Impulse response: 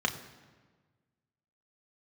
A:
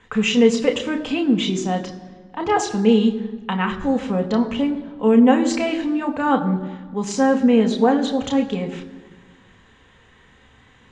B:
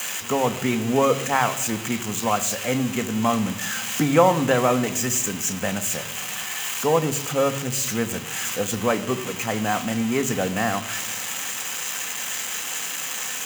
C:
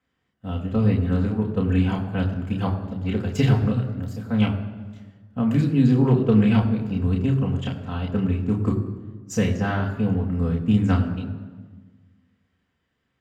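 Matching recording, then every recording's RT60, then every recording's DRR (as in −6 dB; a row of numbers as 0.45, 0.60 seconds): A; 1.4, 1.4, 1.4 seconds; 3.0, 9.5, −2.0 decibels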